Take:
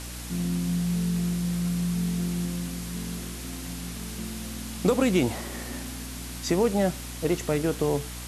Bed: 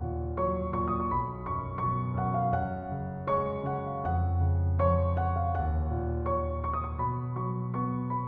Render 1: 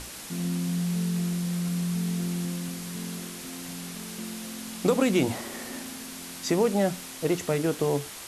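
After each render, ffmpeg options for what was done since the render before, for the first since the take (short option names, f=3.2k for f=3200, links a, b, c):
-af "bandreject=f=60:t=h:w=6,bandreject=f=120:t=h:w=6,bandreject=f=180:t=h:w=6,bandreject=f=240:t=h:w=6,bandreject=f=300:t=h:w=6"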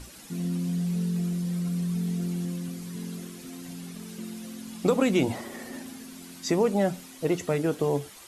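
-af "afftdn=nr=10:nf=-41"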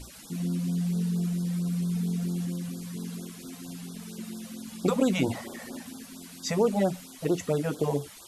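-af "afftfilt=real='re*(1-between(b*sr/1024,290*pow(2400/290,0.5+0.5*sin(2*PI*4.4*pts/sr))/1.41,290*pow(2400/290,0.5+0.5*sin(2*PI*4.4*pts/sr))*1.41))':imag='im*(1-between(b*sr/1024,290*pow(2400/290,0.5+0.5*sin(2*PI*4.4*pts/sr))/1.41,290*pow(2400/290,0.5+0.5*sin(2*PI*4.4*pts/sr))*1.41))':win_size=1024:overlap=0.75"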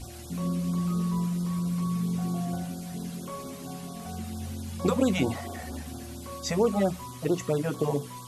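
-filter_complex "[1:a]volume=-11.5dB[a];[0:a][a]amix=inputs=2:normalize=0"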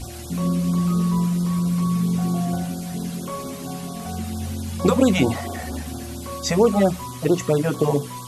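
-af "volume=7.5dB"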